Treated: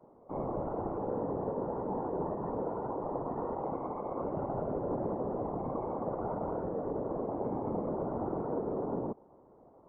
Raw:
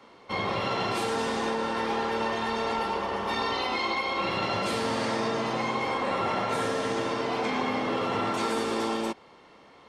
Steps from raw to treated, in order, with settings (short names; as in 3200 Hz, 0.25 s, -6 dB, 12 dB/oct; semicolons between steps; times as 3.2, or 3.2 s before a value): inverse Chebyshev low-pass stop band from 4600 Hz, stop band 80 dB; limiter -24 dBFS, peak gain reduction 5.5 dB; whisperiser; gain -2.5 dB